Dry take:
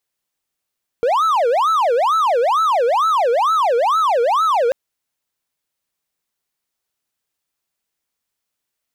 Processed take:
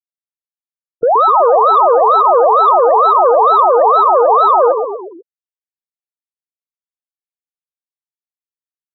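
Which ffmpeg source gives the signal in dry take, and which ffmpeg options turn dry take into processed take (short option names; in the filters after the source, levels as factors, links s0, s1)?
-f lavfi -i "aevalsrc='0.282*(1-4*abs(mod((891.5*t-428.5/(2*PI*2.2)*sin(2*PI*2.2*t))+0.25,1)-0.5))':d=3.69:s=44100"
-filter_complex "[0:a]acontrast=63,asplit=2[s0][s1];[s1]asplit=7[s2][s3][s4][s5][s6][s7][s8];[s2]adelay=123,afreqshift=-34,volume=0.473[s9];[s3]adelay=246,afreqshift=-68,volume=0.251[s10];[s4]adelay=369,afreqshift=-102,volume=0.133[s11];[s5]adelay=492,afreqshift=-136,volume=0.0708[s12];[s6]adelay=615,afreqshift=-170,volume=0.0372[s13];[s7]adelay=738,afreqshift=-204,volume=0.0197[s14];[s8]adelay=861,afreqshift=-238,volume=0.0105[s15];[s9][s10][s11][s12][s13][s14][s15]amix=inputs=7:normalize=0[s16];[s0][s16]amix=inputs=2:normalize=0,afftfilt=real='re*gte(hypot(re,im),0.2)':imag='im*gte(hypot(re,im),0.2)':win_size=1024:overlap=0.75"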